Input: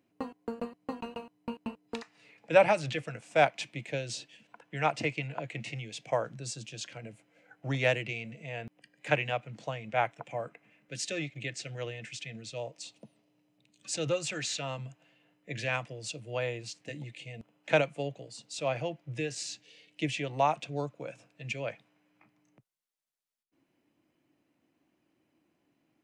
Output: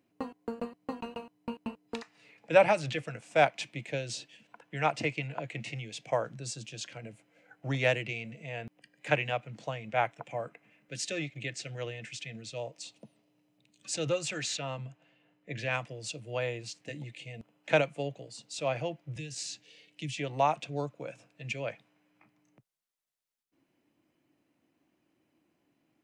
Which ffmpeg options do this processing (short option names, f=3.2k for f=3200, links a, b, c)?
-filter_complex "[0:a]asettb=1/sr,asplit=3[a][b][c];[a]atrim=end=14.574[d];[b]atrim=start=14.57:end=15.71,asetpts=PTS-STARTPTS,afade=t=in:d=0.004:c=qsin,afade=t=out:st=1.136:d=0.004:c=qsin,lowpass=f=3.7k:p=1[e];[c]atrim=start=15.706[f];[d][e]acrossfade=d=0.004:c1=hsin:c2=qsin[g];[g][f]acrossfade=d=0.004:c1=qsin:c2=hsin,asettb=1/sr,asplit=3[h][i][j];[h]atrim=end=19.164[k];[i]atrim=start=19.16:end=20.18,asetpts=PTS-STARTPTS,afade=t=in:d=0.004:c=qsin,afade=t=out:st=1.016:d=0.004:c=qsin,acrossover=split=230|3000[l][m][n];[m]acompressor=threshold=-51dB:ratio=6:attack=3.2:release=140:knee=2.83:detection=peak[o];[l][o][n]amix=inputs=3:normalize=0[p];[j]atrim=start=20.176[q];[k][p]acrossfade=d=0.004:c1=hsin:c2=qsin[r];[r][q]acrossfade=d=0.004:c1=qsin:c2=hsin"